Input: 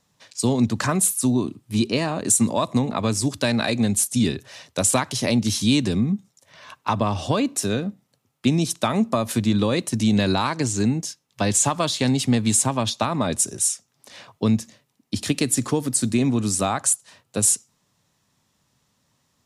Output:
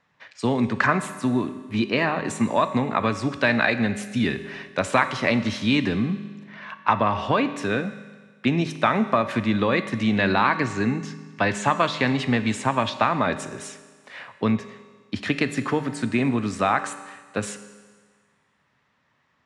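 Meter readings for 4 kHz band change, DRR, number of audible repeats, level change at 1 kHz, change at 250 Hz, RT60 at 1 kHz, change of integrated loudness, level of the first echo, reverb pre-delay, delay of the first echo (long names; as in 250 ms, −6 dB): −4.0 dB, 10.5 dB, no echo audible, +4.0 dB, −2.0 dB, 1.5 s, −2.0 dB, no echo audible, 19 ms, no echo audible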